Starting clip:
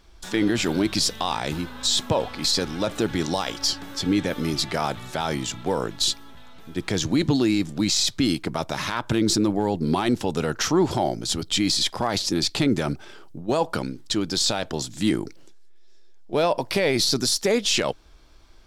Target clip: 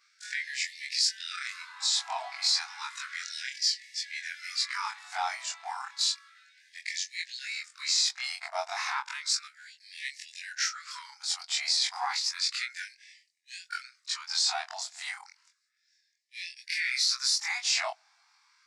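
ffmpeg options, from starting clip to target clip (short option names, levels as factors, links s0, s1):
-af "afftfilt=real='re':imag='-im':win_size=2048:overlap=0.75,highpass=f=150:w=0.5412,highpass=f=150:w=1.3066,equalizer=f=260:t=q:w=4:g=8,equalizer=f=460:t=q:w=4:g=10,equalizer=f=2100:t=q:w=4:g=6,equalizer=f=3200:t=q:w=4:g=-9,equalizer=f=4900:t=q:w=4:g=4,lowpass=f=9000:w=0.5412,lowpass=f=9000:w=1.3066,afftfilt=real='re*gte(b*sr/1024,640*pow(1700/640,0.5+0.5*sin(2*PI*0.32*pts/sr)))':imag='im*gte(b*sr/1024,640*pow(1700/640,0.5+0.5*sin(2*PI*0.32*pts/sr)))':win_size=1024:overlap=0.75"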